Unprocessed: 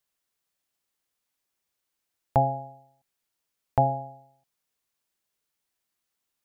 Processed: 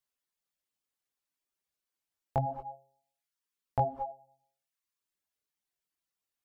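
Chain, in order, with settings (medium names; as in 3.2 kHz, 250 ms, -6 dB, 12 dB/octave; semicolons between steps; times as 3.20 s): chorus 0.57 Hz, delay 15 ms, depth 7.3 ms; gated-style reverb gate 260 ms rising, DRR 8.5 dB; reverb removal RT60 0.8 s; trim -3.5 dB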